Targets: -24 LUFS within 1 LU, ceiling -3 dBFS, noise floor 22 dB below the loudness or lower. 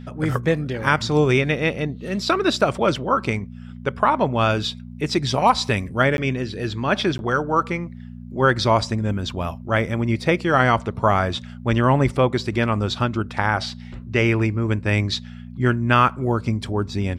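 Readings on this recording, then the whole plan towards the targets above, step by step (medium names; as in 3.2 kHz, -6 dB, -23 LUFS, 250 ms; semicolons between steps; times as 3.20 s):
dropouts 2; longest dropout 11 ms; hum 60 Hz; highest harmonic 240 Hz; hum level -36 dBFS; loudness -21.0 LUFS; peak level -3.5 dBFS; loudness target -24.0 LUFS
-> interpolate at 6.17/7.18 s, 11 ms; de-hum 60 Hz, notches 4; trim -3 dB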